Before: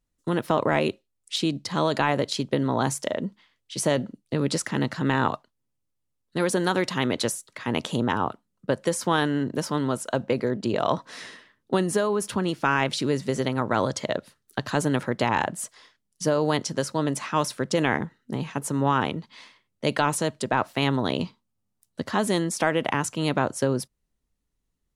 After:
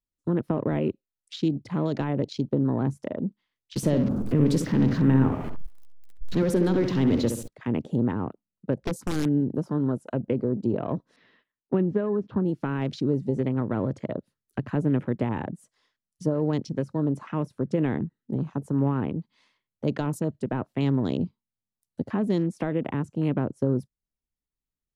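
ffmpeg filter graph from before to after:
-filter_complex "[0:a]asettb=1/sr,asplit=3[a][b][c];[a]atrim=end=3.764[d];[b]atrim=start=3.76:end=7.48,asetpts=PTS-STARTPTS,afade=t=in:d=0.004:c=qsin,afade=t=out:st=3.716:d=0.004:c=qsin,aeval=exprs='val(0)+0.5*0.0596*sgn(val(0))':c=same,asplit=2[e][f];[f]adelay=67,lowpass=f=3.6k:p=1,volume=-7dB,asplit=2[g][h];[h]adelay=67,lowpass=f=3.6k:p=1,volume=0.42,asplit=2[i][j];[j]adelay=67,lowpass=f=3.6k:p=1,volume=0.42,asplit=2[k][l];[l]adelay=67,lowpass=f=3.6k:p=1,volume=0.42,asplit=2[m][n];[n]adelay=67,lowpass=f=3.6k:p=1,volume=0.42[o];[e][g][i][k][m][o]amix=inputs=6:normalize=0,atrim=end_sample=164052[p];[c]atrim=start=7.476[q];[d][p]acrossfade=d=0.004:c1=hsin:c2=qsin[r];[r][q]acrossfade=d=0.004:c1=qsin:c2=hsin,asettb=1/sr,asplit=3[s][t][u];[s]atrim=end=8.784[v];[t]atrim=start=8.78:end=9.41,asetpts=PTS-STARTPTS,afade=t=in:d=0.004:c=qsin,afade=t=out:st=0.626:d=0.004:c=qsin,lowshelf=f=360:g=2.5,aeval=exprs='(mod(5.62*val(0)+1,2)-1)/5.62':c=same[w];[u]atrim=start=9.406[x];[v][w]acrossfade=d=0.004:c1=hsin:c2=qsin[y];[y][x]acrossfade=d=0.004:c1=qsin:c2=hsin,asettb=1/sr,asplit=3[z][aa][ab];[z]atrim=end=11.164[ac];[aa]atrim=start=11.16:end=12.45,asetpts=PTS-STARTPTS,afade=t=in:d=0.004:c=qsin,afade=t=out:st=1.286:d=0.004:c=qsin,lowpass=f=3.7k:w=0.5412,lowpass=f=3.7k:w=1.3066,agate=range=-14dB:threshold=-52dB:ratio=16:release=100:detection=peak[ad];[ab]atrim=start=12.446[ae];[ac][ad]acrossfade=d=0.004:c1=hsin:c2=qsin[af];[af][ae]acrossfade=d=0.004:c1=qsin:c2=hsin,afwtdn=0.0178,acrossover=split=420[ag][ah];[ah]acompressor=threshold=-51dB:ratio=2[ai];[ag][ai]amix=inputs=2:normalize=0,volume=2.5dB"

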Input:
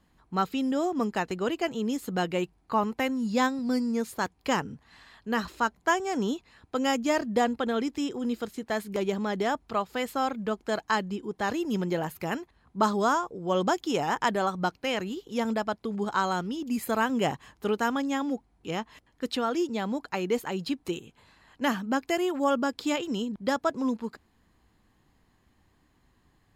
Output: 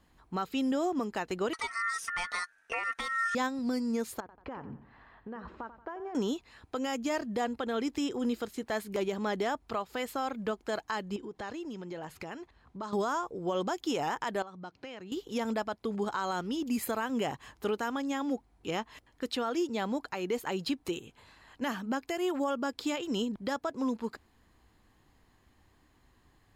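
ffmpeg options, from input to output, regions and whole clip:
-filter_complex "[0:a]asettb=1/sr,asplit=3[a][b][c];[a]atrim=end=1.534[d];[b]atrim=start=1.53:end=3.35,asetpts=PTS-STARTPTS,afade=t=in:d=0.004:c=qsin,afade=t=out:st=1.816:d=0.004:c=qsin,lowpass=f=7.9k:t=q:w=3.9,aecho=1:1:4.4:0.56,atrim=end_sample=80262,aeval=exprs='val(0)*sin(2*PI*1600*n/s)':c=same[e];[c]atrim=start=3.346[f];[d][e]acrossfade=d=0.004:c1=hsin:c2=qsin[g];[g][f]acrossfade=d=0.004:c1=qsin:c2=hsin,asettb=1/sr,asplit=3[h][i][j];[h]atrim=end=4.204[k];[i]atrim=start=4.2:end=6.15,asetpts=PTS-STARTPTS,afade=t=in:d=0.004:c=qsin,afade=t=out:st=1.946:d=0.004:c=qsin,lowpass=1.3k,acompressor=threshold=-37dB:ratio=12:attack=3.2:release=140:knee=1:detection=peak,aecho=1:1:89|178|267|356:0.224|0.094|0.0395|0.0166,atrim=end_sample=85995[l];[j]atrim=start=6.146[m];[k][l]acrossfade=d=0.004:c1=hsin:c2=qsin[n];[n][m]acrossfade=d=0.004:c1=qsin:c2=hsin,asettb=1/sr,asplit=3[o][p][q];[o]atrim=end=11.164[r];[p]atrim=start=11.16:end=12.93,asetpts=PTS-STARTPTS,afade=t=in:d=0.004:c=qsin,afade=t=out:st=1.766:d=0.004:c=qsin,lowpass=7.4k,acompressor=threshold=-38dB:ratio=5:attack=3.2:release=140:knee=1:detection=peak[s];[q]atrim=start=12.926[t];[r][s]acrossfade=d=0.004:c1=hsin:c2=qsin[u];[u][t]acrossfade=d=0.004:c1=qsin:c2=hsin,asettb=1/sr,asplit=3[v][w][x];[v]atrim=end=14.424[y];[w]atrim=start=14.42:end=15.12,asetpts=PTS-STARTPTS,afade=t=in:d=0.004:c=qsin,afade=t=out:st=0.696:d=0.004:c=qsin,lowshelf=f=210:g=8,acompressor=threshold=-42dB:ratio=5:attack=3.2:release=140:knee=1:detection=peak,highpass=120,lowpass=6.1k[z];[x]atrim=start=15.116[aa];[y][z]acrossfade=d=0.004:c1=hsin:c2=qsin[ab];[ab][aa]acrossfade=d=0.004:c1=qsin:c2=hsin,equalizer=f=180:t=o:w=0.89:g=-4.5,alimiter=limit=-24dB:level=0:latency=1:release=218,volume=1.5dB"

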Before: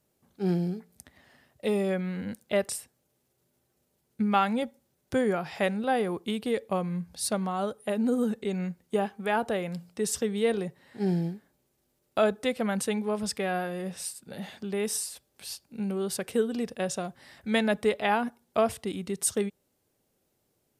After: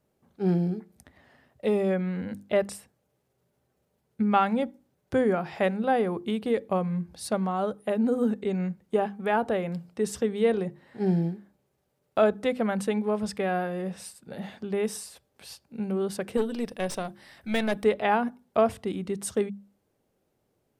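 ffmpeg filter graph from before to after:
-filter_complex "[0:a]asettb=1/sr,asplit=3[a][b][c];[a]atrim=end=16.374[d];[b]atrim=start=16.37:end=17.84,asetpts=PTS-STARTPTS,afade=t=in:d=0.004:c=qsin,afade=t=out:st=1.466:d=0.004:c=qsin,highshelf=f=2.4k:g=10.5,bandreject=f=6.9k:w=5.9,aeval=exprs='(tanh(12.6*val(0)+0.6)-tanh(0.6))/12.6':c=same[e];[c]atrim=start=17.836[f];[d][e]acrossfade=d=0.004:c1=hsin:c2=qsin[g];[g][f]acrossfade=d=0.004:c1=qsin:c2=hsin,highshelf=f=3k:g=-11.5,bandreject=f=50:t=h:w=6,bandreject=f=100:t=h:w=6,bandreject=f=150:t=h:w=6,bandreject=f=200:t=h:w=6,bandreject=f=250:t=h:w=6,bandreject=f=300:t=h:w=6,bandreject=f=350:t=h:w=6,volume=3dB"

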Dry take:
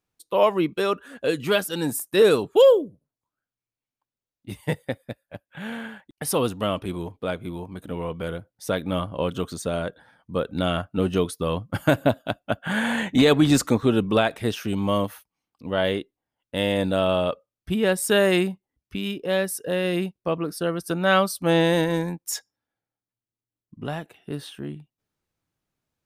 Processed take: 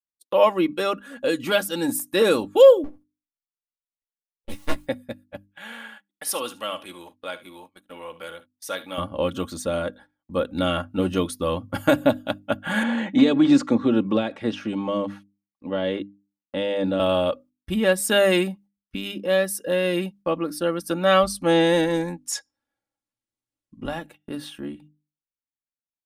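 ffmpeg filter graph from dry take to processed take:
-filter_complex "[0:a]asettb=1/sr,asplit=3[a][b][c];[a]atrim=end=2.844[d];[b]atrim=start=2.84:end=4.87,asetpts=PTS-STARTPTS,afade=t=in:d=0.004:c=qsin,afade=t=out:st=2.026:d=0.004:c=qsin,aeval=exprs='abs(val(0))':c=same,asplit=2[e][f];[f]adelay=14,volume=-6dB[g];[e][g]amix=inputs=2:normalize=0,atrim=end_sample=89523[h];[c]atrim=start=4.866[i];[d][h]acrossfade=d=0.004:c1=hsin:c2=qsin[j];[j][i]acrossfade=d=0.004:c1=qsin:c2=hsin,asettb=1/sr,asplit=3[k][l][m];[k]atrim=end=5.474[n];[l]atrim=start=5.47:end=8.98,asetpts=PTS-STARTPTS,afade=t=in:d=0.004:c=qsin,afade=t=out:st=3.506:d=0.004:c=qsin,highpass=f=1.3k:p=1,aecho=1:1:49|73:0.126|0.141,atrim=end_sample=154791[o];[m]atrim=start=8.976[p];[n][o]acrossfade=d=0.004:c1=hsin:c2=qsin[q];[q][p]acrossfade=d=0.004:c1=qsin:c2=hsin,asettb=1/sr,asplit=3[r][s][t];[r]atrim=end=12.834[u];[s]atrim=start=12.83:end=17,asetpts=PTS-STARTPTS,afade=t=in:d=0.004:c=qsin,afade=t=out:st=4.166:d=0.004:c=qsin,highpass=130,lowpass=7.9k,acrossover=split=470|3000[v][w][x];[w]acompressor=threshold=-29dB:ratio=6:attack=3.2:release=140:knee=2.83:detection=peak[y];[v][y][x]amix=inputs=3:normalize=0,aemphasis=mode=reproduction:type=75fm[z];[t]atrim=start=16.996[aa];[u][z]acrossfade=d=0.004:c1=hsin:c2=qsin[ab];[ab][aa]acrossfade=d=0.004:c1=qsin:c2=hsin,asettb=1/sr,asplit=3[ac][ad][ae];[ac]atrim=end=21.234[af];[ad]atrim=start=21.23:end=23.85,asetpts=PTS-STARTPTS,afade=t=in:d=0.004:c=qsin,afade=t=out:st=2.616:d=0.004:c=qsin,lowpass=f=11k:w=0.5412,lowpass=f=11k:w=1.3066,aeval=exprs='val(0)+0.0178*(sin(2*PI*50*n/s)+sin(2*PI*2*50*n/s)/2+sin(2*PI*3*50*n/s)/3+sin(2*PI*4*50*n/s)/4+sin(2*PI*5*50*n/s)/5)':c=same[ag];[ae]atrim=start=23.846[ah];[af][ag]acrossfade=d=0.004:c1=hsin:c2=qsin[ai];[ai][ah]acrossfade=d=0.004:c1=qsin:c2=hsin,agate=range=-26dB:threshold=-46dB:ratio=16:detection=peak,bandreject=f=50:t=h:w=6,bandreject=f=100:t=h:w=6,bandreject=f=150:t=h:w=6,bandreject=f=200:t=h:w=6,bandreject=f=250:t=h:w=6,bandreject=f=300:t=h:w=6,aecho=1:1:3.6:0.56"

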